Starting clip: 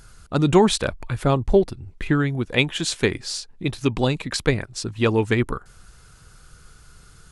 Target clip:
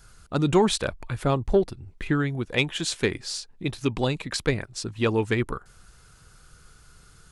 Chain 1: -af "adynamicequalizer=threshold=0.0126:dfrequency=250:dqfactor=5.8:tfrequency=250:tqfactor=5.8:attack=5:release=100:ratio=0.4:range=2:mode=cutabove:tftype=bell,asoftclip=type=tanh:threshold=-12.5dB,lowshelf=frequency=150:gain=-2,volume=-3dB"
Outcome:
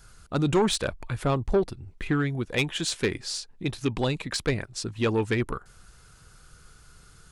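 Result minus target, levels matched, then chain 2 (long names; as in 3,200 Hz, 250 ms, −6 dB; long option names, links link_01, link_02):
soft clipping: distortion +12 dB
-af "adynamicequalizer=threshold=0.0126:dfrequency=250:dqfactor=5.8:tfrequency=250:tqfactor=5.8:attack=5:release=100:ratio=0.4:range=2:mode=cutabove:tftype=bell,asoftclip=type=tanh:threshold=-4dB,lowshelf=frequency=150:gain=-2,volume=-3dB"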